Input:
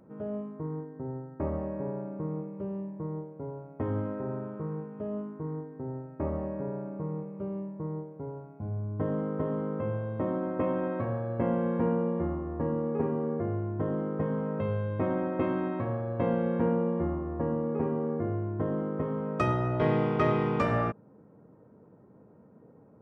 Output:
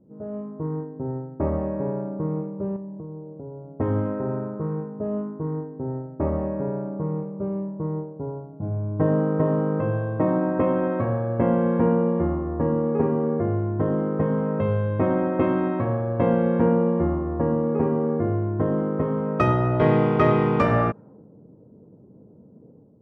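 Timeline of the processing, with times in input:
2.76–3.74 compressor 4:1, threshold -41 dBFS
8.52–10.59 comb 6.4 ms
whole clip: low-pass opened by the level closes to 390 Hz, open at -25 dBFS; high shelf 4000 Hz -7.5 dB; AGC gain up to 6.5 dB; gain +1 dB

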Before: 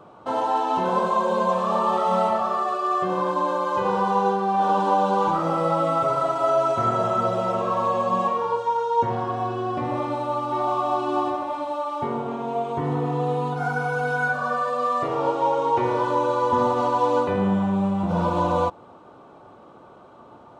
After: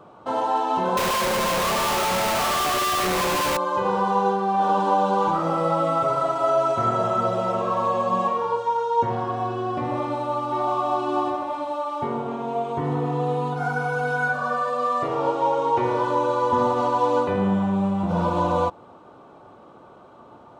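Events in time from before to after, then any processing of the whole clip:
0.97–3.57 infinite clipping

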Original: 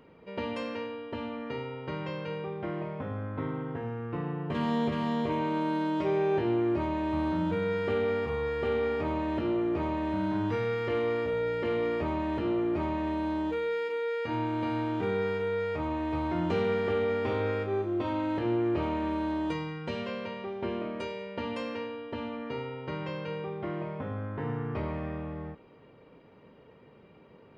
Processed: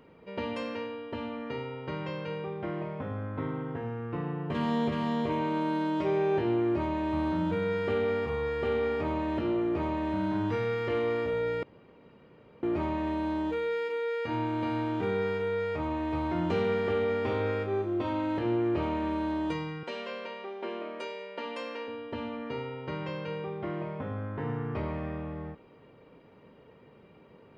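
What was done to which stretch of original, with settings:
11.63–12.63 room tone
19.83–21.88 Bessel high-pass 390 Hz, order 4

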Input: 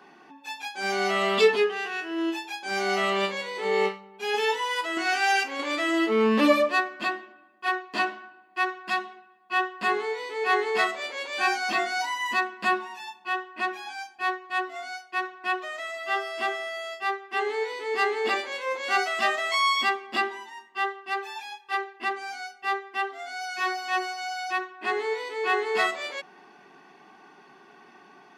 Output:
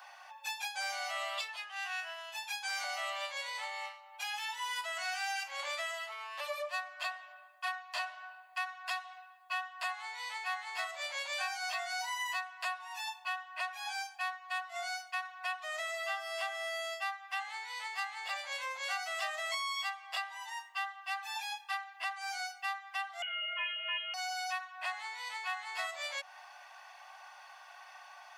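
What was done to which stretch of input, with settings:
2.43–2.84 HPF 820 Hz 24 dB/oct
23.22–24.14 inverted band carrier 3600 Hz
whole clip: high shelf 5100 Hz +10.5 dB; compressor 6:1, threshold -35 dBFS; steep high-pass 570 Hz 96 dB/oct

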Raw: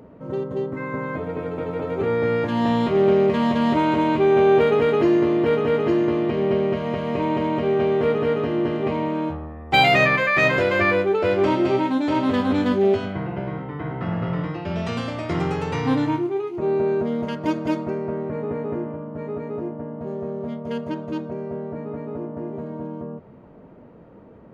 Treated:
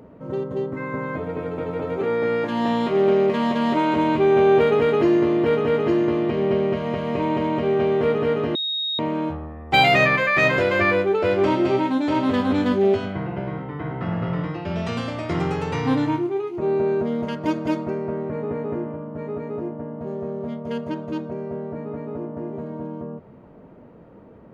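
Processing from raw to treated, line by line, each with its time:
1.97–3.95 bell 86 Hz -14.5 dB 1.1 oct
8.55–8.99 bleep 3750 Hz -22.5 dBFS

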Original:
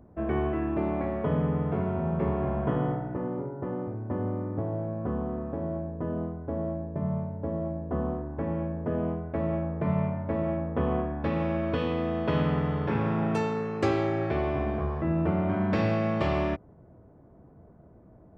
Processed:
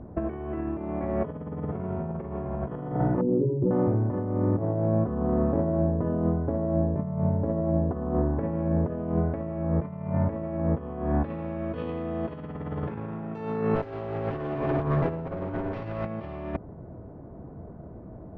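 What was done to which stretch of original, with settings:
3.21–3.71 spectral contrast raised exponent 2.8
13.75–16.06 minimum comb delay 7.4 ms
whole clip: negative-ratio compressor -33 dBFS, ratio -0.5; LPF 4300 Hz 12 dB/oct; high shelf 2100 Hz -10 dB; gain +6.5 dB

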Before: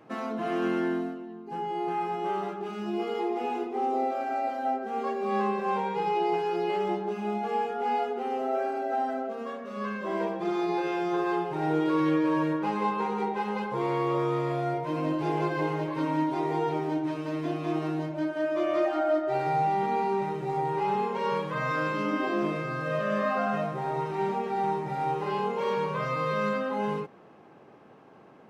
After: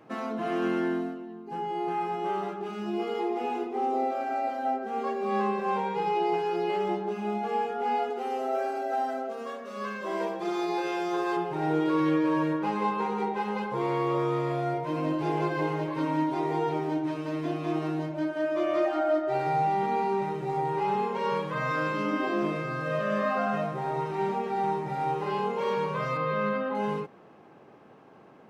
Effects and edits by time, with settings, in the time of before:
8.1–11.37 tone controls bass -8 dB, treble +7 dB
26.17–26.75 LPF 3100 Hz

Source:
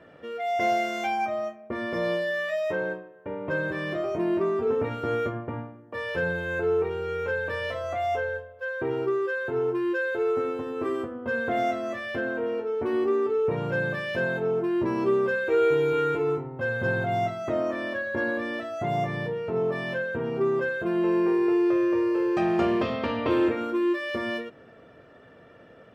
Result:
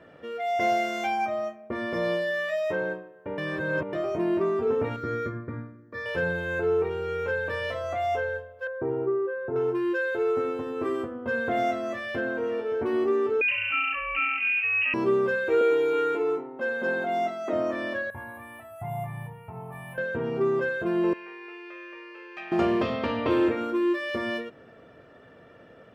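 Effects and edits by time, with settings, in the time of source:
3.38–3.93 reverse
4.96–6.06 fixed phaser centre 2900 Hz, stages 6
8.67–9.56 LPF 1000 Hz
11.8–12.26 echo throw 0.57 s, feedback 55%, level -13.5 dB
13.41–14.94 inverted band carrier 2900 Hz
15.61–17.53 Chebyshev high-pass 210 Hz, order 4
18.1–19.98 EQ curve 120 Hz 0 dB, 310 Hz -21 dB, 560 Hz -20 dB, 800 Hz +1 dB, 1500 Hz -13 dB, 2400 Hz -8 dB, 3500 Hz -19 dB, 5900 Hz -27 dB, 9500 Hz +13 dB
21.13–22.52 band-pass 2400 Hz, Q 2.1

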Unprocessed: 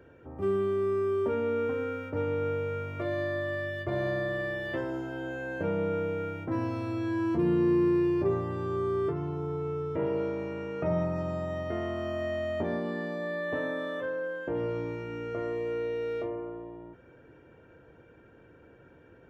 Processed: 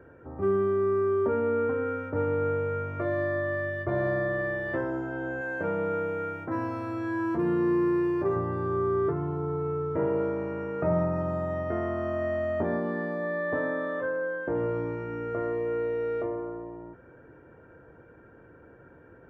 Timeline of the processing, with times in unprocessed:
1.27–1.86 air absorption 75 m
5.41–8.36 tilt +2 dB/oct
whole clip: resonant high shelf 2200 Hz -10.5 dB, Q 1.5; gain +2.5 dB

